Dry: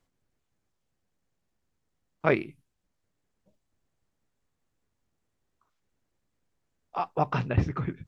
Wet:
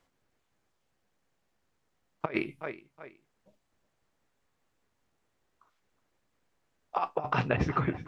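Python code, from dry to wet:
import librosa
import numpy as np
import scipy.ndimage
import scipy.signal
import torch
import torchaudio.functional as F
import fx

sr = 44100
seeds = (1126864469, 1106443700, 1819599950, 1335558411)

p1 = fx.low_shelf(x, sr, hz=310.0, db=-10.5)
p2 = fx.comb_fb(p1, sr, f0_hz=68.0, decay_s=0.17, harmonics='all', damping=0.0, mix_pct=40)
p3 = p2 + fx.echo_feedback(p2, sr, ms=369, feedback_pct=31, wet_db=-20.0, dry=0)
p4 = fx.over_compress(p3, sr, threshold_db=-34.0, ratio=-0.5)
p5 = fx.high_shelf(p4, sr, hz=4400.0, db=-8.0)
y = p5 * 10.0 ** (7.0 / 20.0)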